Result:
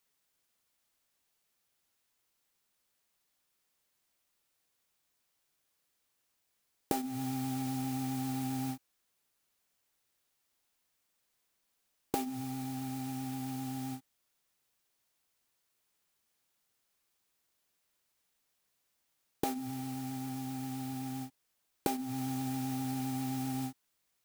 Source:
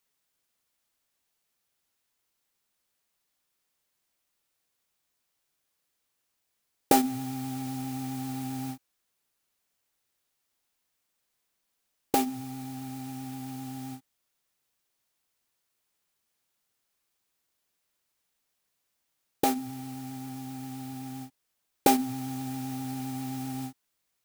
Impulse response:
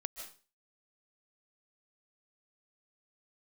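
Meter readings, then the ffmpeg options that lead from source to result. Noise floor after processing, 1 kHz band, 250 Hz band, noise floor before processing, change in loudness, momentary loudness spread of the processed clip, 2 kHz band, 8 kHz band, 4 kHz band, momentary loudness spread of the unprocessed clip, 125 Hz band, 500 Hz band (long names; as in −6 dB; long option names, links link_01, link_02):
−79 dBFS, −8.5 dB, −3.5 dB, −79 dBFS, −5.5 dB, 4 LU, −7.0 dB, −6.5 dB, −6.5 dB, 15 LU, −1.0 dB, −9.5 dB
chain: -af "acompressor=threshold=-30dB:ratio=8"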